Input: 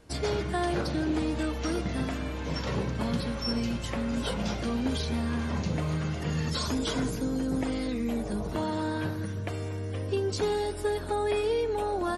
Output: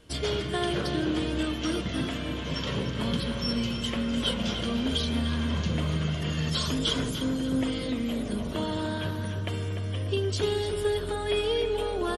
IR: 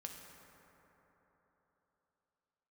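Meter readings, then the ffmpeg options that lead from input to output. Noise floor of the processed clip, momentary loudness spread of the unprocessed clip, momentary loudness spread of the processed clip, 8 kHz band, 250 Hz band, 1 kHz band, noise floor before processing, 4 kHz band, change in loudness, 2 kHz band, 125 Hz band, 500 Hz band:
-33 dBFS, 4 LU, 4 LU, +1.0 dB, +1.0 dB, -2.0 dB, -35 dBFS, +7.0 dB, +1.5 dB, +2.0 dB, +1.5 dB, +0.5 dB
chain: -filter_complex "[0:a]equalizer=f=800:t=o:w=0.33:g=-7,equalizer=f=3150:t=o:w=0.33:g=12,equalizer=f=10000:t=o:w=0.33:g=3,asplit=2[s0][s1];[s1]adelay=297,lowpass=f=2700:p=1,volume=0.473,asplit=2[s2][s3];[s3]adelay=297,lowpass=f=2700:p=1,volume=0.49,asplit=2[s4][s5];[s5]adelay=297,lowpass=f=2700:p=1,volume=0.49,asplit=2[s6][s7];[s7]adelay=297,lowpass=f=2700:p=1,volume=0.49,asplit=2[s8][s9];[s9]adelay=297,lowpass=f=2700:p=1,volume=0.49,asplit=2[s10][s11];[s11]adelay=297,lowpass=f=2700:p=1,volume=0.49[s12];[s2][s4][s6][s8][s10][s12]amix=inputs=6:normalize=0[s13];[s0][s13]amix=inputs=2:normalize=0"

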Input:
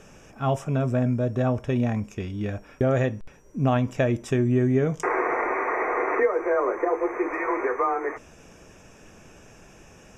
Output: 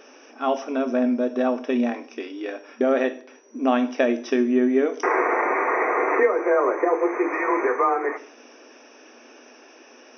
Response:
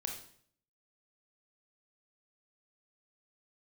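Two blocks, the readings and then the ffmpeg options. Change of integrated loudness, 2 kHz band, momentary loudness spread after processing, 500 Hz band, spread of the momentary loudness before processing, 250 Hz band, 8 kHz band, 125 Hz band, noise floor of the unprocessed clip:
+2.5 dB, +3.5 dB, 13 LU, +3.5 dB, 8 LU, +3.0 dB, no reading, under -30 dB, -51 dBFS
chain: -filter_complex "[0:a]asplit=2[s0][s1];[1:a]atrim=start_sample=2205,asetrate=52920,aresample=44100,highshelf=f=5000:g=11.5[s2];[s1][s2]afir=irnorm=-1:irlink=0,volume=0.668[s3];[s0][s3]amix=inputs=2:normalize=0,afftfilt=real='re*between(b*sr/4096,230,6200)':imag='im*between(b*sr/4096,230,6200)':win_size=4096:overlap=0.75"

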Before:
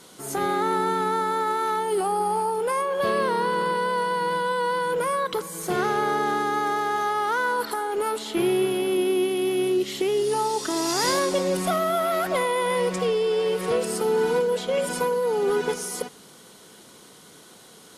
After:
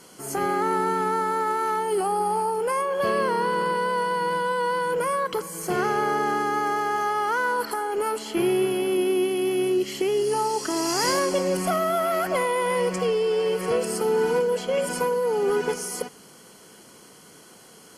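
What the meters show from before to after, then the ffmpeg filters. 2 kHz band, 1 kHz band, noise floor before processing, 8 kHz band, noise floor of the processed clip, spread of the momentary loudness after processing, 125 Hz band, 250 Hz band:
0.0 dB, 0.0 dB, -49 dBFS, 0.0 dB, -50 dBFS, 4 LU, 0.0 dB, 0.0 dB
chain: -af "asuperstop=centerf=3700:order=4:qfactor=5.1"

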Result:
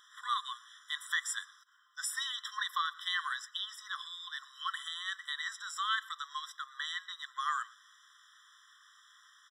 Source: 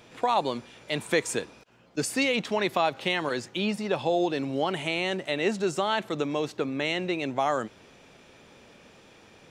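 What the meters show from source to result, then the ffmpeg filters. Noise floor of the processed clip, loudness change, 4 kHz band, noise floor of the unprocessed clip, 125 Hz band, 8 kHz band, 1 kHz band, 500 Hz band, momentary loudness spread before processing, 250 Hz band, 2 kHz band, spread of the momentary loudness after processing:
-63 dBFS, -9.0 dB, -3.5 dB, -55 dBFS, under -40 dB, -4.0 dB, -8.0 dB, under -40 dB, 7 LU, under -40 dB, -5.5 dB, 8 LU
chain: -af "aecho=1:1:117:0.0708,afftfilt=real='re*eq(mod(floor(b*sr/1024/1000),2),1)':imag='im*eq(mod(floor(b*sr/1024/1000),2),1)':win_size=1024:overlap=0.75,volume=0.891"

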